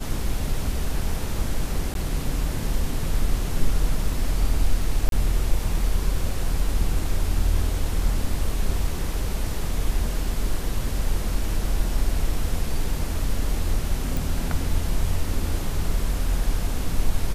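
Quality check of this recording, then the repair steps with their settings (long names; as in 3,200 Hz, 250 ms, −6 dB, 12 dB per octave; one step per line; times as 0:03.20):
0:01.94–0:01.95: drop-out 12 ms
0:05.09–0:05.12: drop-out 32 ms
0:14.17: click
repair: click removal
repair the gap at 0:01.94, 12 ms
repair the gap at 0:05.09, 32 ms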